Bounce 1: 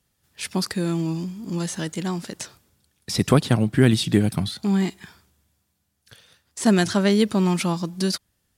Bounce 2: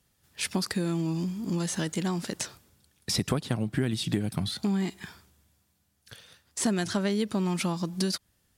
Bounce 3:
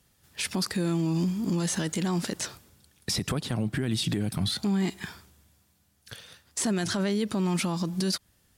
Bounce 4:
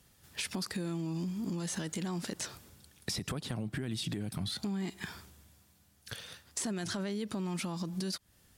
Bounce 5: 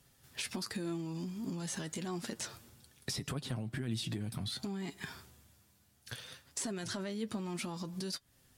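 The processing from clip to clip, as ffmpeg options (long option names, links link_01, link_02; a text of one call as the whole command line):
ffmpeg -i in.wav -af "acompressor=threshold=-26dB:ratio=5,volume=1dB" out.wav
ffmpeg -i in.wav -af "alimiter=limit=-23.5dB:level=0:latency=1:release=32,volume=4.5dB" out.wav
ffmpeg -i in.wav -af "acompressor=threshold=-38dB:ratio=3,volume=1.5dB" out.wav
ffmpeg -i in.wav -af "flanger=delay=7.1:depth=1.9:regen=48:speed=0.61:shape=triangular,volume=2dB" out.wav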